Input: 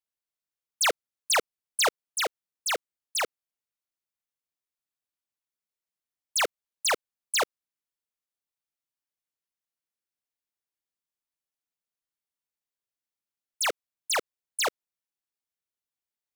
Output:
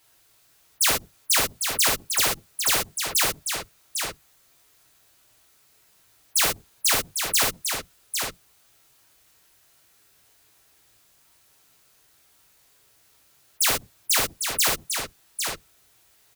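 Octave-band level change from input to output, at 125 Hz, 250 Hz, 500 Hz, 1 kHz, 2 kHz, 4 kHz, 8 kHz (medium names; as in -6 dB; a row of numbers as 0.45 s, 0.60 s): no reading, +9.0 dB, -0.5 dB, +1.0 dB, +3.0 dB, +5.5 dB, +8.5 dB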